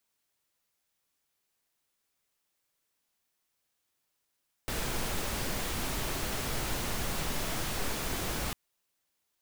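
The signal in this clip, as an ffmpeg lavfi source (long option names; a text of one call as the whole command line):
ffmpeg -f lavfi -i "anoisesrc=color=pink:amplitude=0.115:duration=3.85:sample_rate=44100:seed=1" out.wav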